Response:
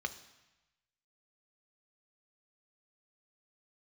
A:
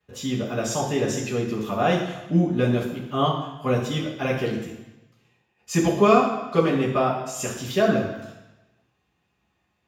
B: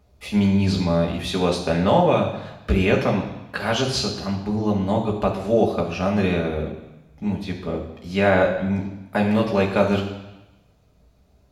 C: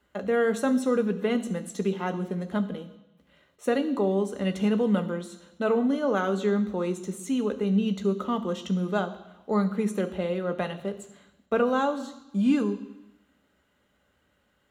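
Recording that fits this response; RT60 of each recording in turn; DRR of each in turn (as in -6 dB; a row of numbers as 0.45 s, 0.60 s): C; 1.0 s, 1.0 s, 1.0 s; -9.0 dB, -1.0 dB, 8.0 dB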